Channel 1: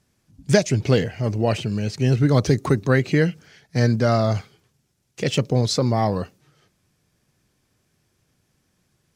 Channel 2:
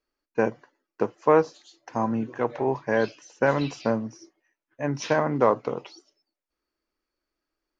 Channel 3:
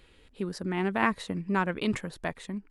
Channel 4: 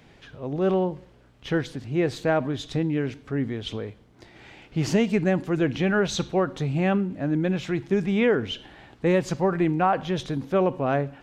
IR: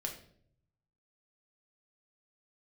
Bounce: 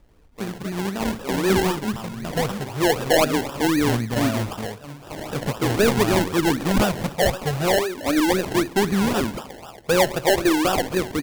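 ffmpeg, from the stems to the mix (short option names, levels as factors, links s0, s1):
-filter_complex "[0:a]adelay=100,volume=0.473[s0];[1:a]aecho=1:1:1.1:0.53,volume=0.237,asplit=2[s1][s2];[s2]volume=0.562[s3];[2:a]lowshelf=f=340:g=7.5,volume=0.75,asplit=3[s4][s5][s6];[s5]volume=0.237[s7];[3:a]asplit=2[s8][s9];[s9]highpass=f=720:p=1,volume=12.6,asoftclip=type=tanh:threshold=0.562[s10];[s8][s10]amix=inputs=2:normalize=0,lowpass=f=3500:p=1,volume=0.501,asplit=2[s11][s12];[s12]afreqshift=-0.41[s13];[s11][s13]amix=inputs=2:normalize=1,adelay=850,volume=0.944,asplit=2[s14][s15];[s15]volume=0.106[s16];[s6]apad=whole_len=408072[s17];[s0][s17]sidechaincompress=threshold=0.00631:ratio=4:attack=16:release=1080[s18];[s3][s7][s16]amix=inputs=3:normalize=0,aecho=0:1:62|124|186|248|310:1|0.32|0.102|0.0328|0.0105[s19];[s18][s1][s4][s14][s19]amix=inputs=5:normalize=0,acrossover=split=2600[s20][s21];[s21]acompressor=threshold=0.0251:ratio=4:attack=1:release=60[s22];[s20][s22]amix=inputs=2:normalize=0,acrusher=samples=29:mix=1:aa=0.000001:lfo=1:lforange=17.4:lforate=3.9"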